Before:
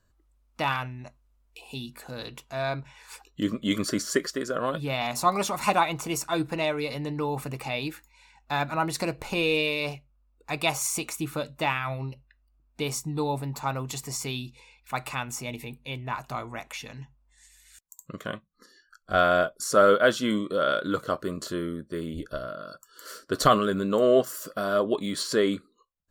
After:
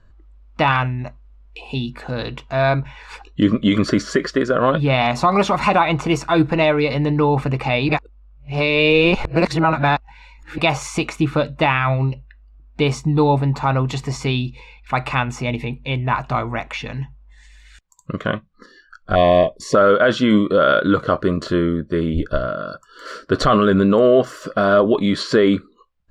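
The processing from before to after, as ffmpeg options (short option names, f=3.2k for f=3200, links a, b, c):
-filter_complex "[0:a]asettb=1/sr,asplit=3[a][b][c];[a]atrim=end=19.154[d];[b]atrim=start=19.15:end=19.75,asetpts=PTS-STARTPTS,afade=t=in:d=0.004:c=qsin,afade=t=out:st=0.596:d=0.004:c=qsin,asuperstop=centerf=1400:order=12:qfactor=2.4[e];[c]atrim=start=19.746[f];[d][e]acrossfade=d=0.004:c1=hsin:c2=qsin[g];[g][f]acrossfade=d=0.004:c1=qsin:c2=hsin,asplit=3[h][i][j];[h]atrim=end=7.892[k];[i]atrim=start=7.888:end=10.582,asetpts=PTS-STARTPTS,areverse[l];[j]atrim=start=10.578[m];[k][l]acrossfade=d=0.004:c1=hsin:c2=hsin[n];[n][m]acrossfade=d=0.004:c1=hsin:c2=hsin,lowpass=3.2k,lowshelf=f=86:g=10,alimiter=level_in=16dB:limit=-1dB:release=50:level=0:latency=1,volume=-4dB"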